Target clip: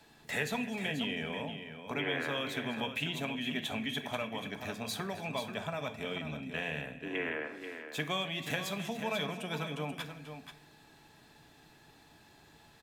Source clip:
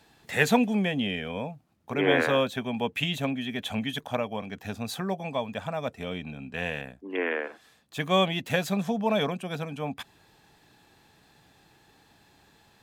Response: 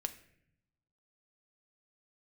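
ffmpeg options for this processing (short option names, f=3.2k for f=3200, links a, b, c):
-filter_complex "[0:a]acrossover=split=200|1300[a][b][c];[a]acompressor=threshold=-46dB:ratio=4[d];[b]acompressor=threshold=-38dB:ratio=4[e];[c]acompressor=threshold=-34dB:ratio=4[f];[d][e][f]amix=inputs=3:normalize=0,aecho=1:1:262|485:0.126|0.355[g];[1:a]atrim=start_sample=2205[h];[g][h]afir=irnorm=-1:irlink=0"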